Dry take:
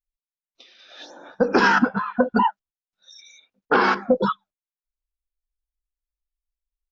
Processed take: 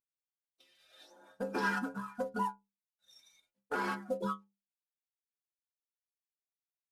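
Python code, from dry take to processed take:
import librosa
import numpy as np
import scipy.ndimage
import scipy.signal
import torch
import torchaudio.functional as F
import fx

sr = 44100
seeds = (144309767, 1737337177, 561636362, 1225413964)

y = fx.cvsd(x, sr, bps=64000)
y = fx.stiff_resonator(y, sr, f0_hz=64.0, decay_s=0.33, stiffness=0.008)
y = y * 10.0 ** (-8.5 / 20.0)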